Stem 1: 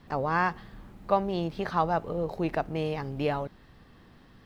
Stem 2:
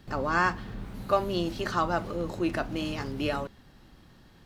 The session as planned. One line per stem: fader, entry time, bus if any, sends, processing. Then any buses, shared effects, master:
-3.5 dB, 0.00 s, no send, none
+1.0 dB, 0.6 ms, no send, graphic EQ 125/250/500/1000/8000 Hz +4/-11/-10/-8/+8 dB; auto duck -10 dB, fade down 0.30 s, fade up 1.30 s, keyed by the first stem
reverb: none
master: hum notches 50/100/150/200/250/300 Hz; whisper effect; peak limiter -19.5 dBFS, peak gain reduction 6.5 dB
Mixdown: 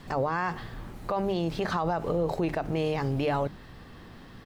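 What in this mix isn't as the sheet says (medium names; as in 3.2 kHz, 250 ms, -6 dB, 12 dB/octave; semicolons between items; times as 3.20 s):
stem 1 -3.5 dB -> +8.0 dB; master: missing whisper effect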